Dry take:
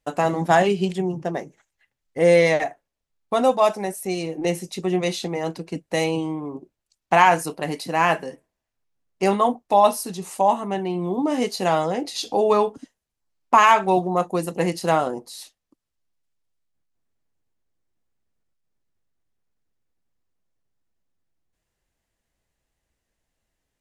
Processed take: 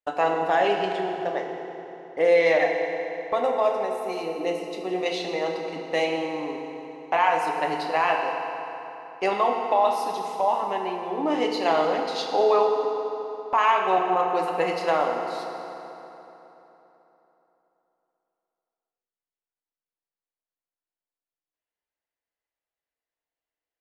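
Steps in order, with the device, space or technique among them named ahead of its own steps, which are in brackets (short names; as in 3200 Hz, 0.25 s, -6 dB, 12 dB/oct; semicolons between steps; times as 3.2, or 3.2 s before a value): DJ mixer with the lows and highs turned down (three-band isolator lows -19 dB, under 370 Hz, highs -19 dB, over 4600 Hz; limiter -13 dBFS, peak gain reduction 9.5 dB); gate -45 dBFS, range -13 dB; 3.35–5.06 bell 2400 Hz -6 dB 2.8 oct; FDN reverb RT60 3.5 s, high-frequency decay 0.7×, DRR 1.5 dB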